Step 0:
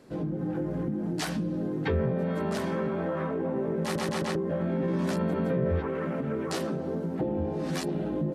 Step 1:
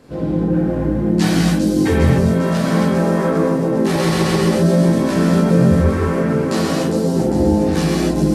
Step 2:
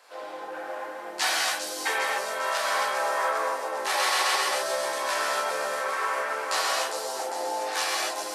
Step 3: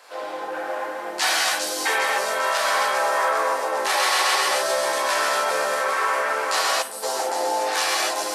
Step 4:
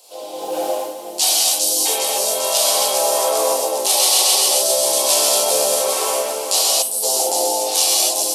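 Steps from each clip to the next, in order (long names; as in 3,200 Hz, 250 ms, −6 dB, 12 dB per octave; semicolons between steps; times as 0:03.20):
low-shelf EQ 81 Hz +10.5 dB; delay with a high-pass on its return 402 ms, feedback 64%, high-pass 5,400 Hz, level −3.5 dB; reverb whose tail is shaped and stops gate 320 ms flat, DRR −6.5 dB; level +5.5 dB
high-pass filter 740 Hz 24 dB per octave
gain on a spectral selection 0:06.82–0:07.03, 270–7,800 Hz −12 dB; in parallel at +1.5 dB: brickwall limiter −21 dBFS, peak gain reduction 8.5 dB
drawn EQ curve 720 Hz 0 dB, 1,700 Hz −23 dB, 2,900 Hz +1 dB, 11,000 Hz +13 dB; automatic gain control gain up to 12.5 dB; level −1 dB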